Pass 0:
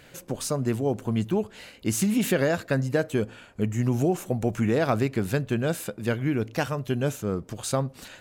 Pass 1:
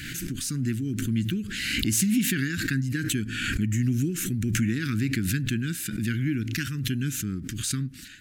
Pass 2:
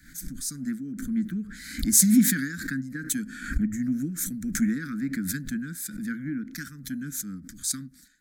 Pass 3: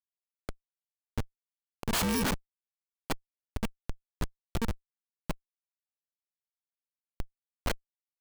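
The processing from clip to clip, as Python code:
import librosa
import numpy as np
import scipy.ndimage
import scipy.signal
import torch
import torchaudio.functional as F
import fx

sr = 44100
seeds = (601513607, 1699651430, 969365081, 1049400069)

y1 = scipy.signal.sosfilt(scipy.signal.ellip(3, 1.0, 60, [300.0, 1600.0], 'bandstop', fs=sr, output='sos'), x)
y1 = fx.pre_swell(y1, sr, db_per_s=29.0)
y2 = fx.fixed_phaser(y1, sr, hz=560.0, stages=8)
y2 = fx.band_widen(y2, sr, depth_pct=100)
y3 = fx.bit_reversed(y2, sr, seeds[0], block=64)
y3 = fx.schmitt(y3, sr, flips_db=-19.5)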